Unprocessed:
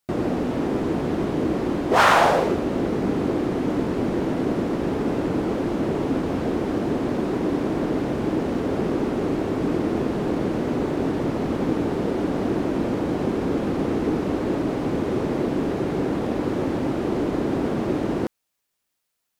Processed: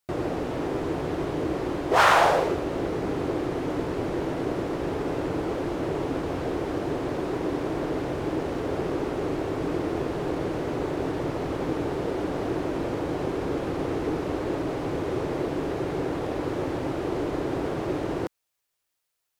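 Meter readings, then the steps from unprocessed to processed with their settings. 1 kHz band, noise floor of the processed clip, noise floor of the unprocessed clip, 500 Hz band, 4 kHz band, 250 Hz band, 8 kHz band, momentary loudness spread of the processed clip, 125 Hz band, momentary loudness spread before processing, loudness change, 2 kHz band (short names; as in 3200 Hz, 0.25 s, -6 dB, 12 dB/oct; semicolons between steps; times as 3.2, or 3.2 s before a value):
-2.0 dB, -80 dBFS, -78 dBFS, -3.0 dB, -2.0 dB, -6.5 dB, n/a, 1 LU, -4.5 dB, 1 LU, -4.0 dB, -2.0 dB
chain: bell 220 Hz -13 dB 0.5 oct; gain -2 dB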